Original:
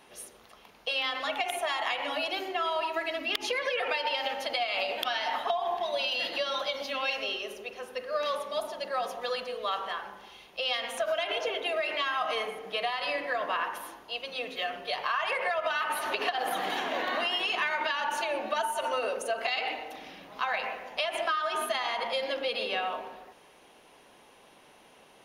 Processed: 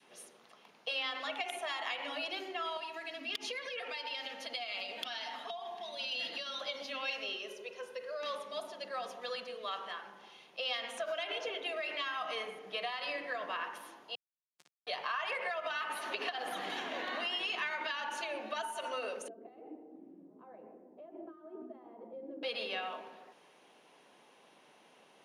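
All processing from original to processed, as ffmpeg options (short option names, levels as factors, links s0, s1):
-filter_complex "[0:a]asettb=1/sr,asplit=3[s0][s1][s2];[s0]atrim=end=2.774[s3];[s1]atrim=start=2.77:end=6.61,asetpts=PTS-STARTPTS,afade=t=in:d=0.004:c=qsin,afade=t=out:st=3.836:d=0.004:c=qsin,acrossover=split=200|3000[s4][s5][s6];[s5]acompressor=threshold=0.0141:ratio=2:attack=3.2:release=140:knee=2.83:detection=peak[s7];[s4][s7][s6]amix=inputs=3:normalize=0,aecho=1:1:4.3:0.33,atrim=end_sample=169344[s8];[s2]atrim=start=6.606[s9];[s3][s8]acrossfade=d=0.004:c1=hsin:c2=qsin[s10];[s10][s9]acrossfade=d=0.004:c1=qsin:c2=hsin,asettb=1/sr,asplit=3[s11][s12][s13];[s11]atrim=end=7.484[s14];[s12]atrim=start=7.48:end=8.23,asetpts=PTS-STARTPTS,afade=t=in:d=0.004:c=qsin,afade=t=out:st=0.746:d=0.004:c=qsin,aecho=1:1:2:0.65,atrim=end_sample=33075,acompressor=threshold=0.0316:ratio=2.5:attack=3.2:release=140:knee=1:detection=peak[s15];[s13]atrim=start=8.226[s16];[s14][s15]acrossfade=d=0.004:c1=hsin:c2=qsin[s17];[s17][s16]acrossfade=d=0.004:c1=qsin:c2=hsin,asettb=1/sr,asplit=3[s18][s19][s20];[s18]atrim=end=14.154[s21];[s19]atrim=start=14.15:end=14.87,asetpts=PTS-STARTPTS,afade=t=in:d=0.004:c=qsin,afade=t=out:st=0.716:d=0.004:c=qsin,bass=f=250:g=6,treble=f=4000:g=5,acrusher=bits=2:mix=0:aa=0.5,asplit=2[s22][s23];[s23]adelay=13,volume=0.531[s24];[s22][s24]amix=inputs=2:normalize=0,atrim=end_sample=31752[s25];[s20]atrim=start=14.866[s26];[s21][s25]acrossfade=d=0.004:c1=hsin:c2=qsin[s27];[s27][s26]acrossfade=d=0.004:c1=qsin:c2=hsin,asettb=1/sr,asplit=3[s28][s29][s30];[s28]atrim=end=19.284[s31];[s29]atrim=start=19.28:end=22.43,asetpts=PTS-STARTPTS,afade=t=in:d=0.004:c=qsin,afade=t=out:st=3.146:d=0.004:c=qsin,lowpass=f=330:t=q:w=3.9,flanger=delay=3:depth=3.3:regen=-77:speed=1.2:shape=sinusoidal[s32];[s30]atrim=start=22.426[s33];[s31][s32]acrossfade=d=0.004:c1=hsin:c2=qsin[s34];[s34][s33]acrossfade=d=0.004:c1=qsin:c2=hsin,lowpass=9500,adynamicequalizer=threshold=0.00631:dfrequency=770:dqfactor=0.83:tfrequency=770:tqfactor=0.83:attack=5:release=100:ratio=0.375:range=2:mode=cutabove:tftype=bell,highpass=f=140:w=0.5412,highpass=f=140:w=1.3066,volume=0.531"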